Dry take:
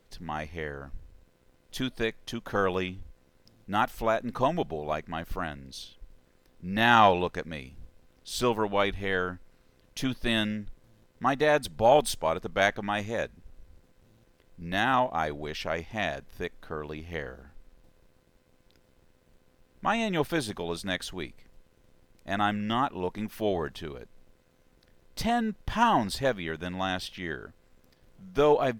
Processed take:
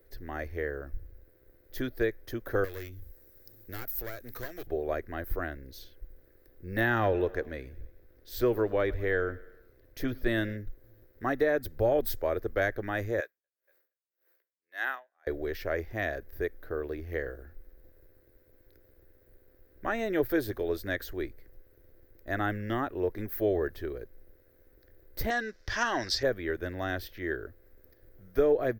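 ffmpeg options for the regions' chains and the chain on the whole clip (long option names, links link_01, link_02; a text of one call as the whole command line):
ffmpeg -i in.wav -filter_complex "[0:a]asettb=1/sr,asplit=3[link_01][link_02][link_03];[link_01]atrim=end=2.644[link_04];[link_02]atrim=start=2.64:end=4.67,asetpts=PTS-STARTPTS,afade=type=in:duration=0.004:curve=qsin,afade=type=out:start_time=2.026:duration=0.004:curve=qsin,aeval=exprs='clip(val(0),-1,0.0211)':channel_layout=same,bass=frequency=250:gain=-1,treble=frequency=4000:gain=11,acrossover=split=91|1600[link_05][link_06][link_07];[link_05]acompressor=threshold=-45dB:ratio=4[link_08];[link_06]acompressor=threshold=-43dB:ratio=4[link_09];[link_07]acompressor=threshold=-40dB:ratio=4[link_10];[link_08][link_09][link_10]amix=inputs=3:normalize=0[link_11];[link_03]atrim=start=4.666[link_12];[link_04][link_11]acrossfade=duration=0.004:curve1=hsin:curve2=qsin[link_13];[link_13][link_12]acrossfade=duration=0.004:curve1=qsin:curve2=hsin,asettb=1/sr,asplit=3[link_14][link_15][link_16];[link_14]atrim=end=6.814[link_17];[link_15]atrim=start=6.81:end=10.57,asetpts=PTS-STARTPTS,afade=type=in:duration=0.004:curve=qsin,afade=type=out:start_time=3.756:duration=0.004:curve=qsin,highshelf=frequency=6100:gain=-4.5,aecho=1:1:106|212|318|424:0.0708|0.0396|0.0222|0.0124,atrim=end_sample=165816[link_18];[link_16]atrim=start=10.566[link_19];[link_17][link_18]acrossfade=duration=0.004:curve1=hsin:curve2=qsin[link_20];[link_20][link_19]acrossfade=duration=0.004:curve1=qsin:curve2=hsin,asettb=1/sr,asplit=3[link_21][link_22][link_23];[link_21]atrim=end=13.204[link_24];[link_22]atrim=start=13.2:end=15.27,asetpts=PTS-STARTPTS,afade=type=in:duration=0.004:curve=qsin,afade=type=out:start_time=2.066:duration=0.004:curve=qsin,highpass=910,aecho=1:1:236|472|708:0.075|0.033|0.0145,atrim=end_sample=91287,aeval=exprs='val(0)*pow(10,-37*(0.5-0.5*cos(2*PI*1.8*n/s))/20)':channel_layout=same[link_25];[link_23]atrim=start=15.266[link_26];[link_24][link_25]acrossfade=duration=0.004:curve1=hsin:curve2=qsin[link_27];[link_27][link_26]acrossfade=duration=0.004:curve1=qsin:curve2=hsin,asettb=1/sr,asplit=3[link_28][link_29][link_30];[link_28]atrim=end=25.304[link_31];[link_29]atrim=start=25.3:end=26.23,asetpts=PTS-STARTPTS,afade=type=in:duration=0.004:curve=qsin,afade=type=out:start_time=0.926:duration=0.004:curve=qsin,lowpass=frequency=5500:width_type=q:width=4.1,tiltshelf=frequency=820:gain=-8[link_32];[link_30]atrim=start=26.226[link_33];[link_31][link_32]acrossfade=duration=0.004:curve1=hsin:curve2=qsin[link_34];[link_34][link_33]acrossfade=duration=0.004:curve1=qsin:curve2=hsin,firequalizer=gain_entry='entry(110,0);entry(160,-17);entry(340,2);entry(590,-2);entry(880,-15);entry(1700,-1);entry(2800,-17);entry(4300,-11);entry(9300,-15);entry(15000,13)':delay=0.05:min_phase=1,acrossover=split=290[link_35][link_36];[link_36]acompressor=threshold=-28dB:ratio=4[link_37];[link_35][link_37]amix=inputs=2:normalize=0,volume=3.5dB" out.wav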